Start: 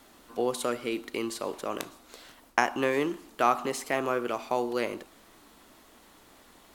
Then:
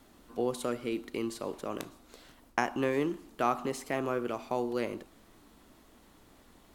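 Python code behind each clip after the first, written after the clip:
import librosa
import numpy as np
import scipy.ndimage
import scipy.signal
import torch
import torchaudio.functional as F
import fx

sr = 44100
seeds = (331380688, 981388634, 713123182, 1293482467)

y = fx.low_shelf(x, sr, hz=320.0, db=10.5)
y = y * librosa.db_to_amplitude(-6.5)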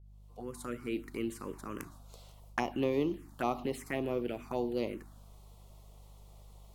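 y = fx.fade_in_head(x, sr, length_s=0.96)
y = fx.add_hum(y, sr, base_hz=50, snr_db=18)
y = fx.env_phaser(y, sr, low_hz=240.0, high_hz=1600.0, full_db=-27.0)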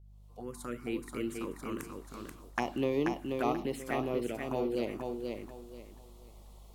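y = fx.echo_feedback(x, sr, ms=484, feedback_pct=27, wet_db=-4.5)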